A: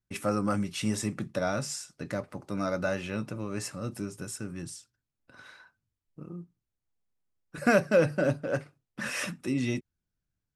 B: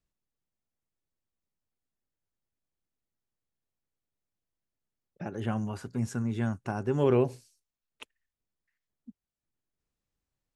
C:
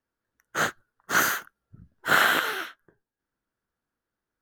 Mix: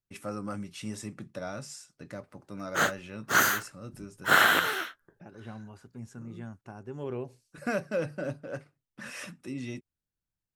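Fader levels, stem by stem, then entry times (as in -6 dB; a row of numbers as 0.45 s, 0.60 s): -8.0 dB, -12.0 dB, -0.5 dB; 0.00 s, 0.00 s, 2.20 s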